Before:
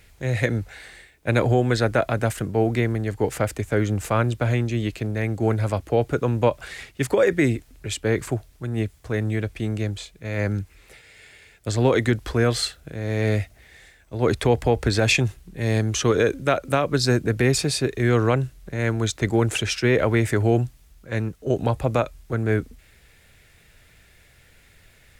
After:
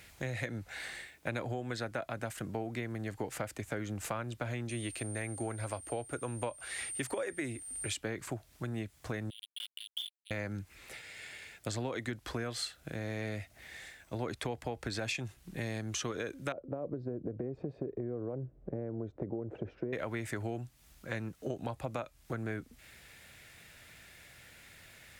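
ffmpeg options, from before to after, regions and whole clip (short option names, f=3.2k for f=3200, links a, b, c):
-filter_complex "[0:a]asettb=1/sr,asplit=3[a][b][c];[a]atrim=end=4.694[d];[b]atrim=start=4.69:end=7.93,asetpts=PTS-STARTPTS,afade=t=in:d=0.004:c=qsin,afade=t=out:st=3.236:d=0.004:c=qsin,equalizer=f=180:w=3.9:g=-13.5,aeval=exprs='val(0)+0.0126*sin(2*PI*8900*n/s)':c=same[e];[c]atrim=start=7.926[f];[d][e]acrossfade=d=0.004:c1=hsin:c2=qsin[g];[g][f]acrossfade=d=0.004:c1=qsin:c2=hsin,asettb=1/sr,asplit=3[h][i][j];[h]atrim=end=9.304[k];[i]atrim=start=9.3:end=10.31,asetpts=PTS-STARTPTS,afade=t=in:d=0.004:c=qsin,afade=t=out:st=1.006:d=0.004:c=qsin,asuperpass=centerf=3200:order=12:qfactor=4.5,acrusher=bits=7:mix=0:aa=0.5,acontrast=66[l];[j]atrim=start=10.306[m];[k][l]acrossfade=d=0.004:c1=hsin:c2=qsin[n];[n][m]acrossfade=d=0.004:c1=qsin:c2=hsin,asettb=1/sr,asplit=3[o][p][q];[o]atrim=end=16.524[r];[p]atrim=start=16.52:end=19.93,asetpts=PTS-STARTPTS,afade=t=in:d=0.004:c=qsin,afade=t=out:st=3.406:d=0.004:c=qsin,acompressor=threshold=-21dB:ratio=6:attack=3.2:release=140:knee=1:detection=peak,lowpass=f=480:t=q:w=2[s];[q]atrim=start=19.926[t];[r][s]acrossfade=d=0.004:c1=hsin:c2=qsin[u];[u][t]acrossfade=d=0.004:c1=qsin:c2=hsin,highpass=f=180:p=1,equalizer=f=430:t=o:w=0.42:g=-5.5,acompressor=threshold=-36dB:ratio=6,volume=1dB"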